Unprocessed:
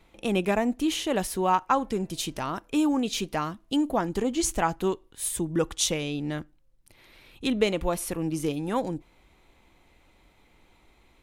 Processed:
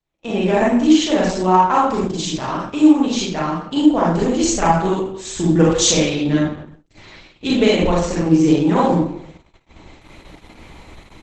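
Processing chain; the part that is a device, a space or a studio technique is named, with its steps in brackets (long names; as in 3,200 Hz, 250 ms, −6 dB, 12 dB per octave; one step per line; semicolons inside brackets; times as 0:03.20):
speakerphone in a meeting room (convolution reverb RT60 0.70 s, pre-delay 31 ms, DRR −5 dB; far-end echo of a speakerphone 160 ms, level −20 dB; automatic gain control gain up to 14.5 dB; noise gate −39 dBFS, range −25 dB; level −1 dB; Opus 12 kbit/s 48,000 Hz)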